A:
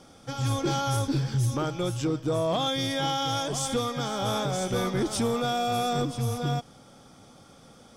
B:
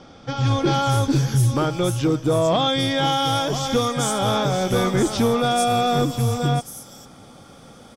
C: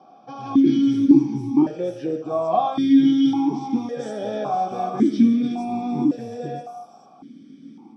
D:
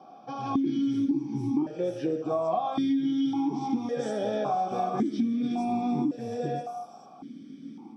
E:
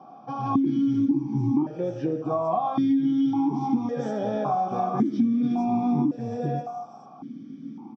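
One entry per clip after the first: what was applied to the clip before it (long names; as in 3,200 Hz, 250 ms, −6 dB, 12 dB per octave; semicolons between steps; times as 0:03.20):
multiband delay without the direct sound lows, highs 450 ms, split 5,700 Hz; level +7.5 dB
parametric band 560 Hz −9 dB 0.29 octaves; convolution reverb RT60 0.70 s, pre-delay 3 ms, DRR 1.5 dB; formant filter that steps through the vowels 1.8 Hz; level −3 dB
downward compressor 8 to 1, threshold −24 dBFS, peak gain reduction 16 dB
octave-band graphic EQ 125/250/1,000/4,000 Hz +11/+5/+9/−3 dB; downsampling to 16,000 Hz; level −3 dB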